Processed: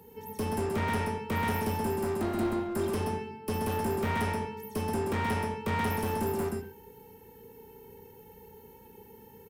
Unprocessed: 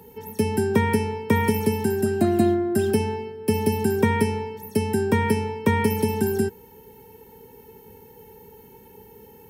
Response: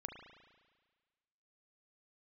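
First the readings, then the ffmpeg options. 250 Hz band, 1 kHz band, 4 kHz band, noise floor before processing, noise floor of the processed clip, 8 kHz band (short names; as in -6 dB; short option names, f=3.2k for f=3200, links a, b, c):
-10.0 dB, -4.0 dB, -6.0 dB, -49 dBFS, -53 dBFS, -7.5 dB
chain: -filter_complex "[0:a]aecho=1:1:128:0.531,volume=21dB,asoftclip=hard,volume=-21dB[a];[1:a]atrim=start_sample=2205,atrim=end_sample=6174[b];[a][b]afir=irnorm=-1:irlink=0,volume=-1.5dB"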